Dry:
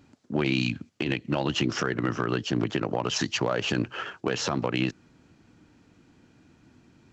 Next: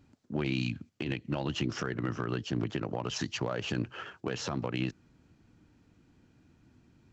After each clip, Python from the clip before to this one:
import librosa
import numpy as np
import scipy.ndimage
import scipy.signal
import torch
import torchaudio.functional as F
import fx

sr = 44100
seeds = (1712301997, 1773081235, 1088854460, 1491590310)

y = fx.low_shelf(x, sr, hz=130.0, db=9.5)
y = y * librosa.db_to_amplitude(-8.0)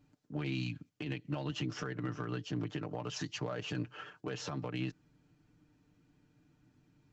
y = x + 0.65 * np.pad(x, (int(6.7 * sr / 1000.0), 0))[:len(x)]
y = y * librosa.db_to_amplitude(-7.0)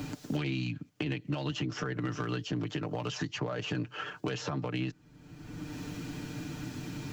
y = fx.band_squash(x, sr, depth_pct=100)
y = y * librosa.db_to_amplitude(4.0)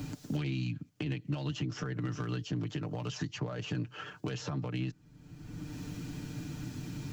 y = fx.bass_treble(x, sr, bass_db=7, treble_db=4)
y = y * librosa.db_to_amplitude(-5.5)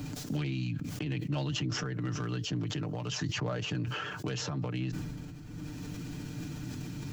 y = fx.sustainer(x, sr, db_per_s=24.0)